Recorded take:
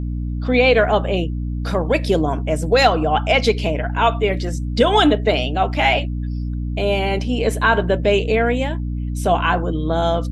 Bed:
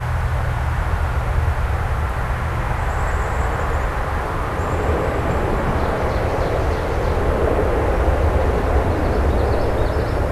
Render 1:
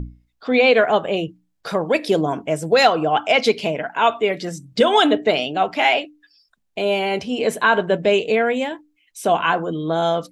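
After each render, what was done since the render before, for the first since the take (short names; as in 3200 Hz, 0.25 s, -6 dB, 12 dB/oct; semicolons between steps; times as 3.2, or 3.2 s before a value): notches 60/120/180/240/300 Hz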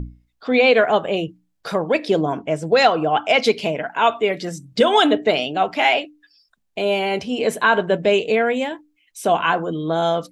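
1.81–3.28 air absorption 62 m; 4.19–4.69 short-mantissa float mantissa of 8-bit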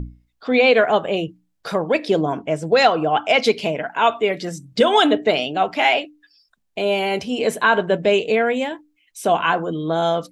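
6.98–7.51 high shelf 9800 Hz +9.5 dB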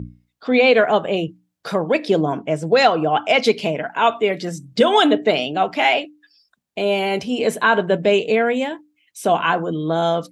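HPF 120 Hz 12 dB/oct; low shelf 170 Hz +6.5 dB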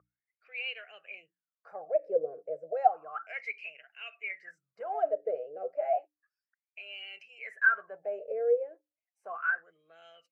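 fixed phaser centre 950 Hz, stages 6; wah 0.32 Hz 480–2900 Hz, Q 16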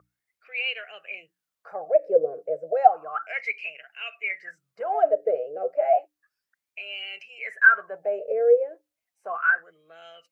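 gain +8.5 dB; limiter -3 dBFS, peak gain reduction 1 dB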